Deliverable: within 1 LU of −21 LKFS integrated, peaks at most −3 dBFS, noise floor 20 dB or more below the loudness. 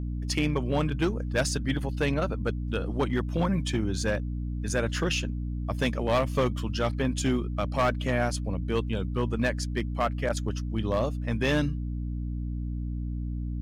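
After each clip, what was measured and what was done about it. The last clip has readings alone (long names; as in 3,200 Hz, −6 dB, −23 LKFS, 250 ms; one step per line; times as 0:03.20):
share of clipped samples 0.8%; peaks flattened at −18.5 dBFS; mains hum 60 Hz; hum harmonics up to 300 Hz; level of the hum −29 dBFS; integrated loudness −29.0 LKFS; sample peak −18.5 dBFS; target loudness −21.0 LKFS
→ clipped peaks rebuilt −18.5 dBFS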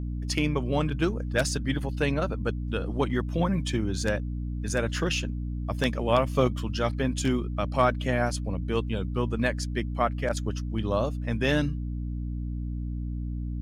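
share of clipped samples 0.0%; mains hum 60 Hz; hum harmonics up to 300 Hz; level of the hum −29 dBFS
→ hum removal 60 Hz, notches 5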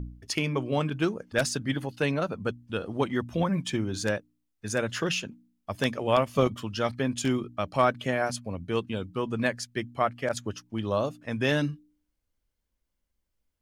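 mains hum none found; integrated loudness −29.0 LKFS; sample peak −9.0 dBFS; target loudness −21.0 LKFS
→ level +8 dB
brickwall limiter −3 dBFS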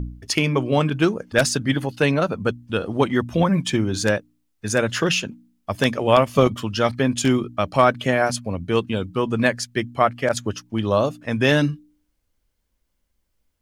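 integrated loudness −21.0 LKFS; sample peak −3.0 dBFS; background noise floor −72 dBFS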